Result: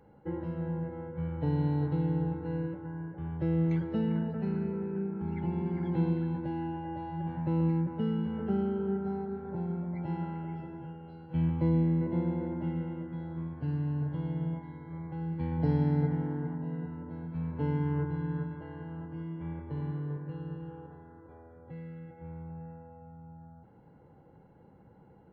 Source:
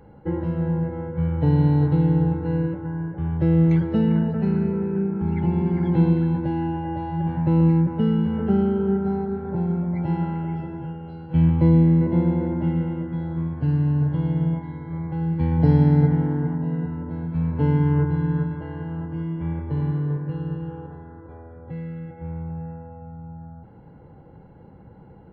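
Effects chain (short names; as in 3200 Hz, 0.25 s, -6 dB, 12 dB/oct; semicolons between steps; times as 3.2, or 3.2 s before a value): low shelf 110 Hz -8 dB; gain -8.5 dB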